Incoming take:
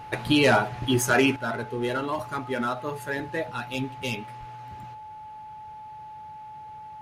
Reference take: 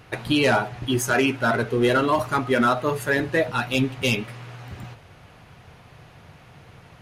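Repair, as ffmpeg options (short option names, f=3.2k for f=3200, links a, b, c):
-filter_complex "[0:a]bandreject=f=860:w=30,asplit=3[a][b][c];[a]afade=t=out:st=4.39:d=0.02[d];[b]highpass=f=140:w=0.5412,highpass=f=140:w=1.3066,afade=t=in:st=4.39:d=0.02,afade=t=out:st=4.51:d=0.02[e];[c]afade=t=in:st=4.51:d=0.02[f];[d][e][f]amix=inputs=3:normalize=0,asetnsamples=n=441:p=0,asendcmd='1.36 volume volume 8.5dB',volume=0dB"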